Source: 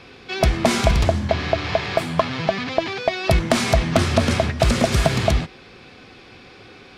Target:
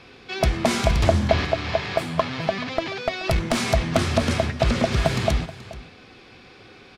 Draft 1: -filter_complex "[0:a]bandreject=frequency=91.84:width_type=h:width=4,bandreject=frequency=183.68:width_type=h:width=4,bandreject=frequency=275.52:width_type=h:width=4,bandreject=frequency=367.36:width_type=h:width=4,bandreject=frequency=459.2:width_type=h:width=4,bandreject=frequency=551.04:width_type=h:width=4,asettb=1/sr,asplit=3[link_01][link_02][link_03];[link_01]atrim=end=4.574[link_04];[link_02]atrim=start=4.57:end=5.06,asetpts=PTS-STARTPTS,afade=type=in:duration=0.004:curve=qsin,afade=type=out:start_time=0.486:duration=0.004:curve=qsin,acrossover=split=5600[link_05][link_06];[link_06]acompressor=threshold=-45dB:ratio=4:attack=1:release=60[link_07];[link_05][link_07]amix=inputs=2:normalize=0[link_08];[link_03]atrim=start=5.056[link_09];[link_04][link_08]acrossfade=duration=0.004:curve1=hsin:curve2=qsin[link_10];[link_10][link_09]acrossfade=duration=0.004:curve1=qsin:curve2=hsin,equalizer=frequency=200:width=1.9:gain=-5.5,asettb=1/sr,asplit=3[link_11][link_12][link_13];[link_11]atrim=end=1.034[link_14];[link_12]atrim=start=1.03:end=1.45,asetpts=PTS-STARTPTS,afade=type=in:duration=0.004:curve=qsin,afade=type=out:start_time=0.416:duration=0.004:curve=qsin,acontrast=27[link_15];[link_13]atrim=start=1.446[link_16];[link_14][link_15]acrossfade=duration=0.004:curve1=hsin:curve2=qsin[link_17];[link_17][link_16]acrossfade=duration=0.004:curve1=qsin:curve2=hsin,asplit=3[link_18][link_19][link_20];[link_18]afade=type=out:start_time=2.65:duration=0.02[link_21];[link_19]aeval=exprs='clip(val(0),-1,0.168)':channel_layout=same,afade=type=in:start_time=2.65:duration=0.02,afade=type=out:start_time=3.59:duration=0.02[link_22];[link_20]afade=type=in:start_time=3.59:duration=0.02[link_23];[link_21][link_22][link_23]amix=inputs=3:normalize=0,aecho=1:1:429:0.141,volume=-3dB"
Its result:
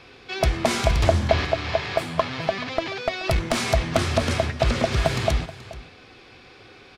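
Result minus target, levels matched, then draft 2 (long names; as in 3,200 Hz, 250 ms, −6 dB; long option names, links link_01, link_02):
250 Hz band −2.5 dB
-filter_complex "[0:a]bandreject=frequency=91.84:width_type=h:width=4,bandreject=frequency=183.68:width_type=h:width=4,bandreject=frequency=275.52:width_type=h:width=4,bandreject=frequency=367.36:width_type=h:width=4,bandreject=frequency=459.2:width_type=h:width=4,bandreject=frequency=551.04:width_type=h:width=4,asettb=1/sr,asplit=3[link_01][link_02][link_03];[link_01]atrim=end=1.034[link_04];[link_02]atrim=start=1.03:end=1.45,asetpts=PTS-STARTPTS,afade=type=in:duration=0.004:curve=qsin,afade=type=out:start_time=0.416:duration=0.004:curve=qsin,acontrast=27[link_05];[link_03]atrim=start=1.446[link_06];[link_04][link_05]acrossfade=duration=0.004:curve1=hsin:curve2=qsin[link_07];[link_07][link_06]acrossfade=duration=0.004:curve1=qsin:curve2=hsin,asplit=3[link_08][link_09][link_10];[link_08]afade=type=out:start_time=2.65:duration=0.02[link_11];[link_09]aeval=exprs='clip(val(0),-1,0.168)':channel_layout=same,afade=type=in:start_time=2.65:duration=0.02,afade=type=out:start_time=3.59:duration=0.02[link_12];[link_10]afade=type=in:start_time=3.59:duration=0.02[link_13];[link_11][link_12][link_13]amix=inputs=3:normalize=0,asettb=1/sr,asplit=3[link_14][link_15][link_16];[link_14]atrim=end=4.574[link_17];[link_15]atrim=start=4.57:end=5.06,asetpts=PTS-STARTPTS,afade=type=in:duration=0.004:curve=qsin,afade=type=out:start_time=0.486:duration=0.004:curve=qsin,acrossover=split=5600[link_18][link_19];[link_19]acompressor=threshold=-45dB:ratio=4:attack=1:release=60[link_20];[link_18][link_20]amix=inputs=2:normalize=0[link_21];[link_16]atrim=start=5.056[link_22];[link_17][link_21]acrossfade=duration=0.004:curve1=hsin:curve2=qsin[link_23];[link_23][link_22]acrossfade=duration=0.004:curve1=qsin:curve2=hsin,aecho=1:1:429:0.141,volume=-3dB"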